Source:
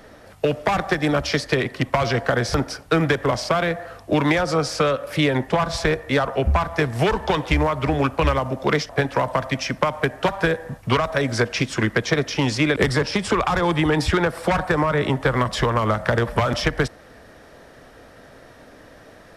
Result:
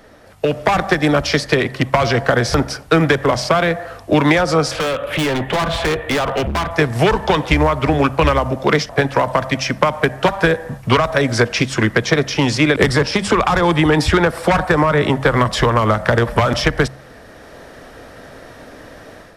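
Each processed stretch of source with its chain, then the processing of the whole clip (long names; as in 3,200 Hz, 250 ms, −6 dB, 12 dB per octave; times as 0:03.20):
0:04.71–0:06.71: high shelf with overshoot 4,100 Hz −8 dB, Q 3 + gain into a clipping stage and back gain 23 dB + multiband upward and downward compressor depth 40%
whole clip: hum removal 66.77 Hz, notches 3; automatic gain control gain up to 8 dB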